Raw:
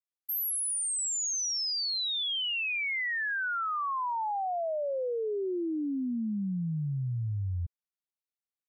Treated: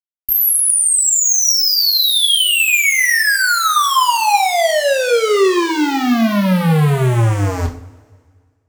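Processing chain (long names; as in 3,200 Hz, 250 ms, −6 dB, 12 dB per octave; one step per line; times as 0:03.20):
fuzz pedal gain 60 dB, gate −60 dBFS
harmonic generator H 3 −15 dB, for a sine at −10.5 dBFS
coupled-rooms reverb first 0.37 s, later 1.8 s, from −20 dB, DRR 2 dB
level −1 dB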